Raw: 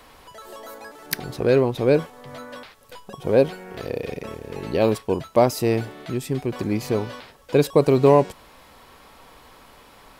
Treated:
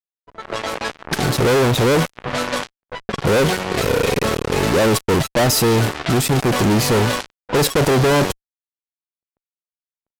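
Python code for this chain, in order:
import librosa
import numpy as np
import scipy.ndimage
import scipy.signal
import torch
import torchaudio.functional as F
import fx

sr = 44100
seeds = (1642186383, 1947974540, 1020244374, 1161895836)

y = fx.fuzz(x, sr, gain_db=41.0, gate_db=-37.0)
y = fx.env_lowpass(y, sr, base_hz=660.0, full_db=-15.5)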